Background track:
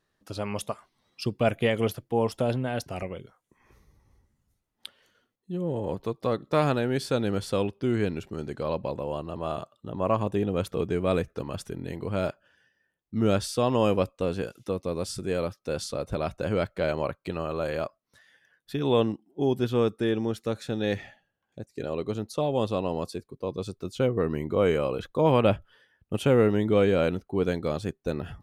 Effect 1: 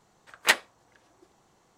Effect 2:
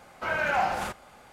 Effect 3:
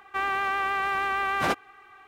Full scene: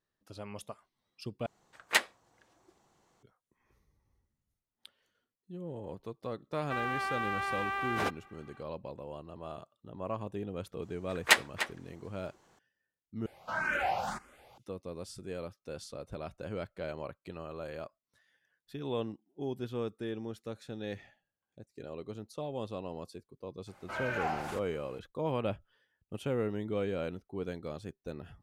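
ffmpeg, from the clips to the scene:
-filter_complex "[1:a]asplit=2[a][b];[2:a]asplit=2[c][d];[0:a]volume=-12dB[e];[b]asplit=2[f][g];[g]adelay=297.4,volume=-10dB,highshelf=f=4k:g=-6.69[h];[f][h]amix=inputs=2:normalize=0[i];[c]asplit=2[j][k];[k]afreqshift=1.8[l];[j][l]amix=inputs=2:normalize=1[m];[e]asplit=3[n][o][p];[n]atrim=end=1.464[q];[a]atrim=end=1.77,asetpts=PTS-STARTPTS,volume=-5.5dB[r];[o]atrim=start=3.226:end=13.264[s];[m]atrim=end=1.32,asetpts=PTS-STARTPTS,volume=-3dB[t];[p]atrim=start=14.576[u];[3:a]atrim=end=2.07,asetpts=PTS-STARTPTS,volume=-7.5dB,afade=t=in:d=0.004:c=hsin,afade=t=out:st=2.066:d=0.004:c=hsin,adelay=6560[v];[i]atrim=end=1.77,asetpts=PTS-STARTPTS,volume=-1.5dB,afade=t=in:d=0.004:c=hsin,afade=t=out:st=1.766:d=0.004:c=hsin,adelay=477162S[w];[d]atrim=end=1.32,asetpts=PTS-STARTPTS,volume=-9dB,afade=t=in:d=0.004:c=hsin,afade=t=out:st=1.316:d=0.004:c=hsin,adelay=23670[x];[q][r]acrossfade=d=0.004:c1=hsin:c2=hsin[y];[y][s]acrossfade=d=0.004:c1=hsin:c2=hsin[z];[z][t]acrossfade=d=0.004:c1=hsin:c2=hsin[aa];[aa][u]acrossfade=d=0.004:c1=hsin:c2=hsin[ab];[ab][v][w][x]amix=inputs=4:normalize=0"

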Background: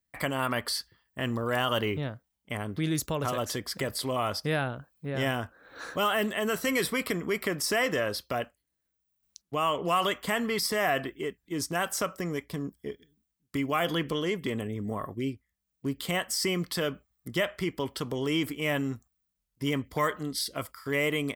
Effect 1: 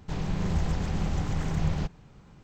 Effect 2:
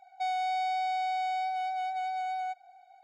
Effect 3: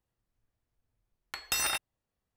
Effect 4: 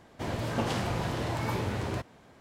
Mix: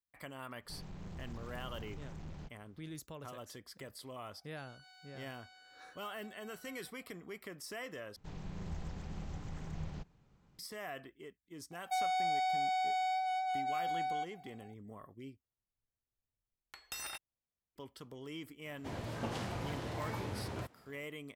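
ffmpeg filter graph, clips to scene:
-filter_complex "[1:a]asplit=2[a][b];[2:a]asplit=2[c][d];[0:a]volume=-17.5dB[e];[a]asoftclip=type=hard:threshold=-24.5dB[f];[c]aecho=1:1:7.4:0.97[g];[d]highshelf=f=6.4k:g=9[h];[e]asplit=3[i][j][k];[i]atrim=end=8.164[l];[b]atrim=end=2.43,asetpts=PTS-STARTPTS,volume=-15dB[m];[j]atrim=start=10.586:end=15.404[n];[3:a]atrim=end=2.36,asetpts=PTS-STARTPTS,volume=-13.5dB[o];[k]atrim=start=17.756[p];[f]atrim=end=2.43,asetpts=PTS-STARTPTS,volume=-17.5dB,afade=t=in:d=0.05,afade=t=out:st=2.38:d=0.05,adelay=610[q];[g]atrim=end=3.03,asetpts=PTS-STARTPTS,volume=-17.5dB,afade=t=in:d=0.004:c=hsin,afade=t=out:st=3.026:d=0.004:c=hsin,adelay=4360[r];[h]atrim=end=3.03,asetpts=PTS-STARTPTS,volume=-3dB,afade=t=in:d=0.004:c=hsin,afade=t=out:st=3.026:d=0.004:c=hsin,adelay=11710[s];[4:a]atrim=end=2.4,asetpts=PTS-STARTPTS,volume=-9dB,afade=t=in:d=0.004:c=hsin,afade=t=out:st=2.396:d=0.004:c=hsin,adelay=18650[t];[l][m]acrossfade=d=0.004:c1=hsin:c2=hsin[u];[u][n]acrossfade=d=0.004:c1=hsin:c2=hsin[v];[v][o]acrossfade=d=0.004:c1=hsin:c2=hsin[w];[w][p]acrossfade=d=0.004:c1=hsin:c2=hsin[x];[x][q][r][s][t]amix=inputs=5:normalize=0"

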